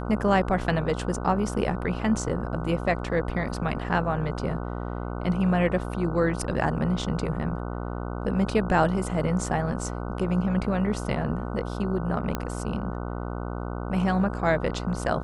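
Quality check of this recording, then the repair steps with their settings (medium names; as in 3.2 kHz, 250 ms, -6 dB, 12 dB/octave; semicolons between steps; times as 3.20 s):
buzz 60 Hz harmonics 25 -32 dBFS
12.35 s: pop -13 dBFS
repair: de-click; de-hum 60 Hz, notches 25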